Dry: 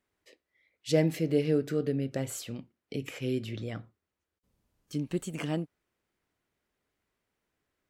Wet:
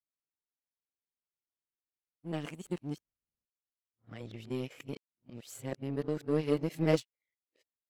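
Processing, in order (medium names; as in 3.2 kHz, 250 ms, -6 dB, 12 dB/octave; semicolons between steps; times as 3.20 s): reverse the whole clip; power-law waveshaper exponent 1.4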